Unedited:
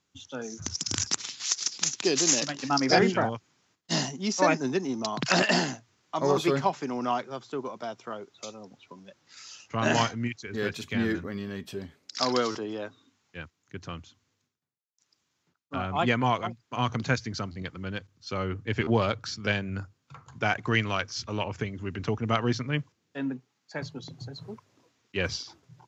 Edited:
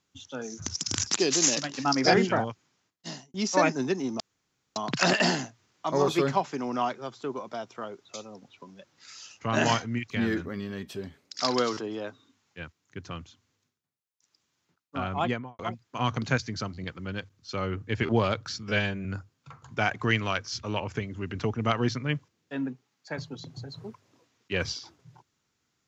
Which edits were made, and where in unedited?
0:01.15–0:02.00: remove
0:03.28–0:04.19: fade out
0:05.05: splice in room tone 0.56 s
0:10.39–0:10.88: remove
0:15.91–0:16.37: fade out and dull
0:19.41–0:19.69: time-stretch 1.5×

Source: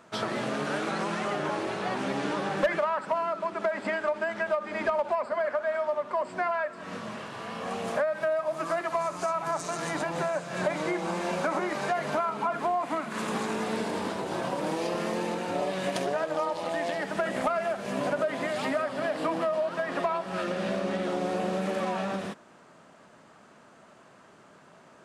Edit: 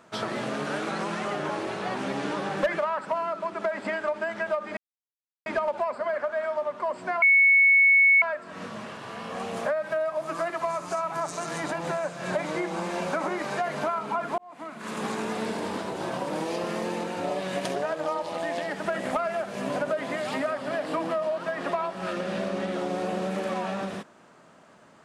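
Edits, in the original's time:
0:04.77: splice in silence 0.69 s
0:06.53: insert tone 2,210 Hz −14.5 dBFS 1.00 s
0:12.69–0:13.39: fade in

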